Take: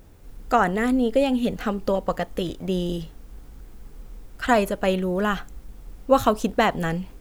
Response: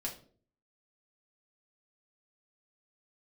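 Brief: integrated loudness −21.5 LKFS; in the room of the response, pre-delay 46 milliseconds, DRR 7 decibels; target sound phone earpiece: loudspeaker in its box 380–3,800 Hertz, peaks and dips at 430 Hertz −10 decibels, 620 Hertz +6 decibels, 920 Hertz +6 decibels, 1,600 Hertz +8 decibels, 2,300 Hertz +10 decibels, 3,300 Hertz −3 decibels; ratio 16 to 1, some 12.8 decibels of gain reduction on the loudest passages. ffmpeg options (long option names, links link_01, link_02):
-filter_complex "[0:a]acompressor=threshold=-25dB:ratio=16,asplit=2[link_01][link_02];[1:a]atrim=start_sample=2205,adelay=46[link_03];[link_02][link_03]afir=irnorm=-1:irlink=0,volume=-7.5dB[link_04];[link_01][link_04]amix=inputs=2:normalize=0,highpass=380,equalizer=frequency=430:width_type=q:width=4:gain=-10,equalizer=frequency=620:width_type=q:width=4:gain=6,equalizer=frequency=920:width_type=q:width=4:gain=6,equalizer=frequency=1600:width_type=q:width=4:gain=8,equalizer=frequency=2300:width_type=q:width=4:gain=10,equalizer=frequency=3300:width_type=q:width=4:gain=-3,lowpass=frequency=3800:width=0.5412,lowpass=frequency=3800:width=1.3066,volume=8.5dB"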